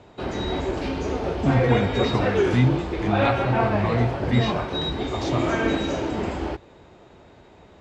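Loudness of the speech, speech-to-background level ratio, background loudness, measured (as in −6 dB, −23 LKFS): −25.5 LKFS, −0.5 dB, −25.0 LKFS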